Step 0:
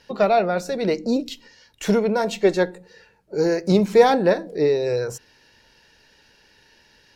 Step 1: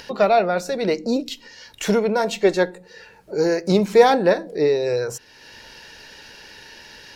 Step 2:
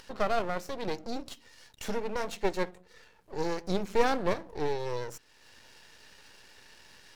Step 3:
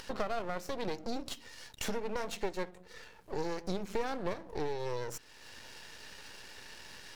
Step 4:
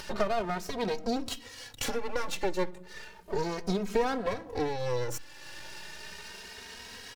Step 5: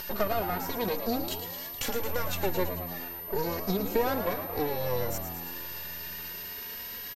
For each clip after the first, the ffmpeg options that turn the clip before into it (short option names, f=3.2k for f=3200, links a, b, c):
-filter_complex "[0:a]lowshelf=f=300:g=-5,asplit=2[a][b];[b]acompressor=mode=upward:threshold=-24dB:ratio=2.5,volume=-2.5dB[c];[a][c]amix=inputs=2:normalize=0,volume=-2.5dB"
-af "aeval=exprs='max(val(0),0)':c=same,volume=-8.5dB"
-af "acompressor=threshold=-37dB:ratio=4,volume=5dB"
-filter_complex "[0:a]asplit=2[a][b];[b]adelay=2.9,afreqshift=0.34[c];[a][c]amix=inputs=2:normalize=1,volume=8.5dB"
-filter_complex "[0:a]asplit=9[a][b][c][d][e][f][g][h][i];[b]adelay=111,afreqshift=85,volume=-9.5dB[j];[c]adelay=222,afreqshift=170,volume=-13.4dB[k];[d]adelay=333,afreqshift=255,volume=-17.3dB[l];[e]adelay=444,afreqshift=340,volume=-21.1dB[m];[f]adelay=555,afreqshift=425,volume=-25dB[n];[g]adelay=666,afreqshift=510,volume=-28.9dB[o];[h]adelay=777,afreqshift=595,volume=-32.8dB[p];[i]adelay=888,afreqshift=680,volume=-36.6dB[q];[a][j][k][l][m][n][o][p][q]amix=inputs=9:normalize=0,aeval=exprs='val(0)+0.0126*sin(2*PI*13000*n/s)':c=same"